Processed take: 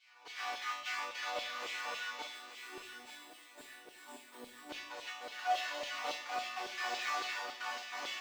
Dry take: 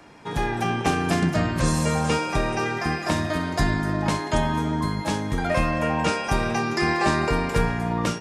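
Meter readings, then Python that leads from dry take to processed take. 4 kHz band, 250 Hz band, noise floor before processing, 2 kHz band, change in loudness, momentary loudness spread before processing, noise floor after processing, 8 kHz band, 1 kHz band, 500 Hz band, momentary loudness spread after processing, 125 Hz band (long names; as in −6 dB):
−8.5 dB, −34.5 dB, −32 dBFS, −12.5 dB, −15.5 dB, 4 LU, −58 dBFS, −15.0 dB, −14.5 dB, −21.5 dB, 16 LU, below −40 dB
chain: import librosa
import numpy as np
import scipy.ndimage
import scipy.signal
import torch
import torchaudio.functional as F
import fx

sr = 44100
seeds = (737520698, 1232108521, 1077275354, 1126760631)

p1 = fx.halfwave_hold(x, sr)
p2 = fx.spec_box(p1, sr, start_s=2.23, length_s=2.47, low_hz=480.0, high_hz=7400.0, gain_db=-16)
p3 = fx.riaa(p2, sr, side='recording')
p4 = fx.rider(p3, sr, range_db=4, speed_s=2.0)
p5 = p3 + (p4 * librosa.db_to_amplitude(2.5))
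p6 = fx.step_gate(p5, sr, bpm=144, pattern='xxxxxxx.xx.xx', floor_db=-60.0, edge_ms=4.5)
p7 = fx.wow_flutter(p6, sr, seeds[0], rate_hz=2.1, depth_cents=78.0)
p8 = fx.resonator_bank(p7, sr, root=59, chord='minor', decay_s=0.66)
p9 = fx.filter_lfo_highpass(p8, sr, shape='saw_down', hz=3.6, low_hz=490.0, high_hz=3300.0, q=1.9)
p10 = fx.air_absorb(p9, sr, metres=190.0)
p11 = p10 + fx.echo_thinned(p10, sr, ms=881, feedback_pct=30, hz=1200.0, wet_db=-8.0, dry=0)
p12 = fx.room_shoebox(p11, sr, seeds[1], volume_m3=350.0, walls='mixed', distance_m=0.44)
y = p12 * librosa.db_to_amplitude(-2.5)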